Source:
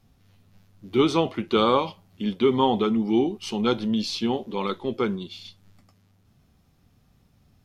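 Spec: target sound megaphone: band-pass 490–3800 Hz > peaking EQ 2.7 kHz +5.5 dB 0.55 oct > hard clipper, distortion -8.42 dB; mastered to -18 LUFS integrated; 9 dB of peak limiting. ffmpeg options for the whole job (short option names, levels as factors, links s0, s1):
-af "alimiter=limit=0.168:level=0:latency=1,highpass=490,lowpass=3800,equalizer=f=2700:t=o:w=0.55:g=5.5,asoftclip=type=hard:threshold=0.0335,volume=7.08"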